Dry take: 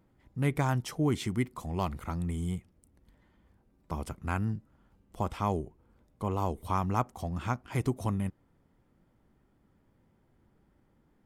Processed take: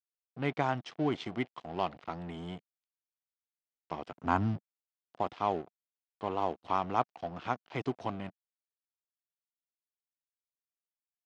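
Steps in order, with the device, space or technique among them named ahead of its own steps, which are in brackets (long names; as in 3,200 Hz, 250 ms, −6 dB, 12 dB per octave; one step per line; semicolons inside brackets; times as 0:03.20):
0:04.16–0:04.57: graphic EQ with 15 bands 100 Hz +12 dB, 250 Hz +10 dB, 1,000 Hz +9 dB, 2,500 Hz −5 dB, 6,300 Hz +11 dB
blown loudspeaker (dead-zone distortion −43 dBFS; loudspeaker in its box 200–4,900 Hz, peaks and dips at 210 Hz −5 dB, 710 Hz +6 dB, 3,000 Hz +4 dB)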